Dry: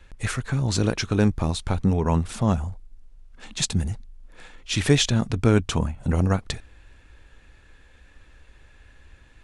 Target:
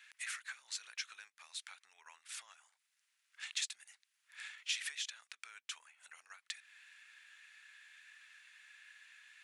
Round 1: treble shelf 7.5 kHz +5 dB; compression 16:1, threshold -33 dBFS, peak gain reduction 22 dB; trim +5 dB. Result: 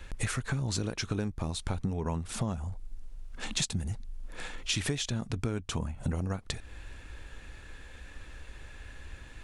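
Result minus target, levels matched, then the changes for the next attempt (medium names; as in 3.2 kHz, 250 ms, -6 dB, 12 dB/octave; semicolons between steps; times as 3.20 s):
2 kHz band -5.0 dB
add after compression: ladder high-pass 1.5 kHz, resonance 35%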